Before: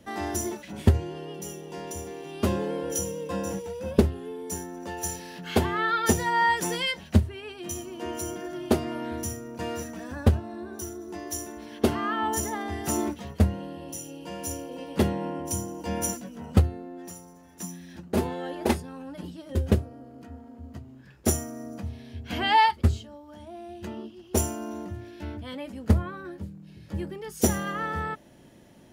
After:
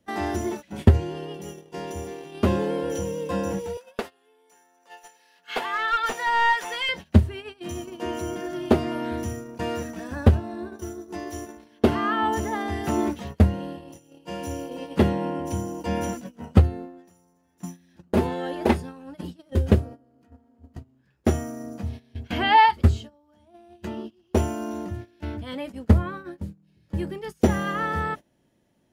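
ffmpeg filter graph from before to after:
-filter_complex "[0:a]asettb=1/sr,asplit=3[s0][s1][s2];[s0]atrim=end=3.774[s3];[s1]atrim=start=3.77:end=6.89,asetpts=PTS-STARTPTS,afade=t=in:d=0.004:c=qsin,afade=t=out:st=3.116:d=0.004:c=qsin,highpass=840,aecho=1:1:4.2:0.34,atrim=end_sample=137592,aeval=exprs='clip(val(0),-1,0.0562)':c=same[s4];[s2]atrim=start=6.886[s5];[s3][s4]acrossfade=d=0.004:c1=hsin:c2=qsin[s6];[s6][s5]acrossfade=d=0.004:c1=qsin:c2=hsin,acrossover=split=3600[s7][s8];[s8]acompressor=threshold=0.00355:ratio=4:attack=1:release=60[s9];[s7][s9]amix=inputs=2:normalize=0,agate=range=0.126:threshold=0.0126:ratio=16:detection=peak,volume=1.58"

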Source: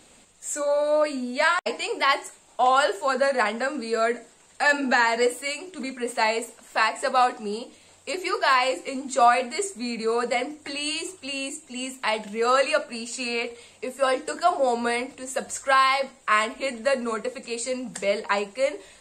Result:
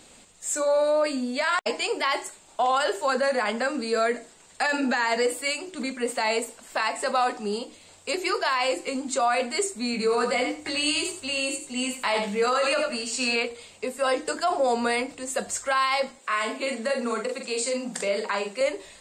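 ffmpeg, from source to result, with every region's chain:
-filter_complex "[0:a]asettb=1/sr,asplit=3[s0][s1][s2];[s0]atrim=end=9.924[s3];[s1]atrim=start=9.92:end=13.36,asetpts=PTS-STARTPTS,afade=t=in:d=0.004:c=qsin,afade=t=out:st=3.436:d=0.004:c=qsin,asplit=2[s4][s5];[s5]adelay=20,volume=0.501[s6];[s4][s6]amix=inputs=2:normalize=0,atrim=end_sample=151704,aecho=1:1:85|170|255:0.398|0.0637|0.0102,atrim=end_sample=151704[s7];[s2]atrim=start=13.356[s8];[s3][s7]acrossfade=d=0.004:c1=hsin:c2=qsin[s9];[s9][s8]acrossfade=d=0.004:c1=qsin:c2=hsin,asettb=1/sr,asplit=3[s10][s11][s12];[s10]atrim=end=16.194[s13];[s11]atrim=start=16.19:end=18.61,asetpts=PTS-STARTPTS,afade=t=in:d=0.004:c=qsin,afade=t=out:st=2.416:d=0.004:c=qsin,highpass=f=200:w=0.5412,highpass=f=200:w=1.3066,acompressor=threshold=0.0501:ratio=3:attack=3.2:release=140:knee=1:detection=peak,asplit=2[s14][s15];[s15]adelay=45,volume=0.562[s16];[s14][s16]amix=inputs=2:normalize=0,atrim=end_sample=106722[s17];[s12]atrim=start=18.606[s18];[s13][s17]acrossfade=d=0.004:c1=hsin:c2=qsin[s19];[s19][s18]acrossfade=d=0.004:c1=qsin:c2=hsin,alimiter=limit=0.141:level=0:latency=1:release=25,equalizer=f=4900:w=1.5:g=2.5,volume=1.19"

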